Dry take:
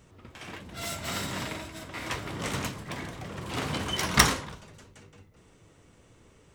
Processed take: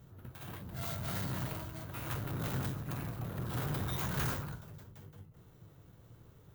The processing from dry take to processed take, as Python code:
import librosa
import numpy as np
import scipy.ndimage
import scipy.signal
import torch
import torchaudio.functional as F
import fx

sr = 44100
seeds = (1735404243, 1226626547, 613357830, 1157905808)

y = np.repeat(x[::4], 4)[:len(x)]
y = fx.graphic_eq_10(y, sr, hz=(125, 250, 500, 2000, 4000, 8000, 16000), db=(9, -6, -4, -9, -7, -9, 10))
y = fx.tube_stage(y, sr, drive_db=31.0, bias=0.45)
y = fx.formant_shift(y, sr, semitones=3)